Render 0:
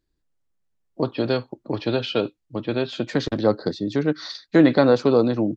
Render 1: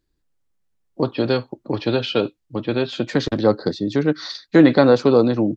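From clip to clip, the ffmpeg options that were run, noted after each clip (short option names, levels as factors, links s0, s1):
-af "bandreject=f=640:w=18,volume=1.41"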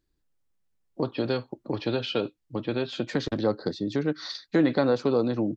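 -af "acompressor=threshold=0.0501:ratio=1.5,volume=0.668"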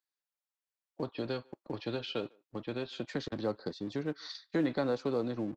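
-filter_complex "[0:a]acrossover=split=590|1900[s0][s1][s2];[s0]aeval=exprs='sgn(val(0))*max(abs(val(0))-0.00631,0)':c=same[s3];[s3][s1][s2]amix=inputs=3:normalize=0,asplit=2[s4][s5];[s5]adelay=150,highpass=300,lowpass=3400,asoftclip=type=hard:threshold=0.0944,volume=0.0398[s6];[s4][s6]amix=inputs=2:normalize=0,volume=0.398"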